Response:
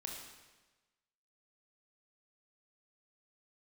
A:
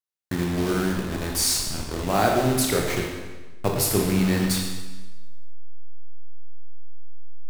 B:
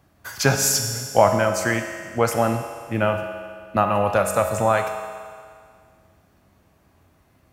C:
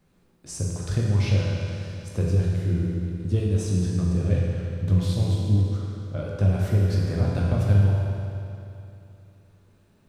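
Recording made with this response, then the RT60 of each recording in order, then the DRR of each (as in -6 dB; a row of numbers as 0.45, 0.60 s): A; 1.2, 2.0, 2.8 s; 0.0, 4.0, -4.0 dB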